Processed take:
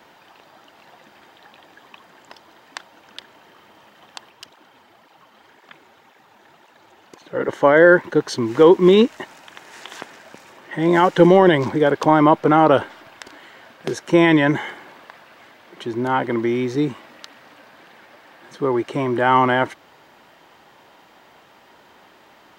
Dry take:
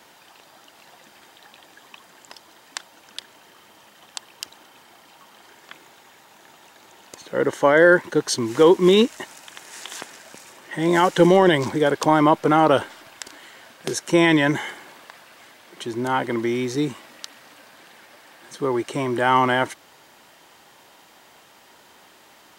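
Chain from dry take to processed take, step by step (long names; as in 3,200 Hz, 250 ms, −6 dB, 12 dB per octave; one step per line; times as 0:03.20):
parametric band 10,000 Hz −14.5 dB 1.9 octaves
0:04.30–0:07.49: through-zero flanger with one copy inverted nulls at 1.9 Hz, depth 7.3 ms
level +3 dB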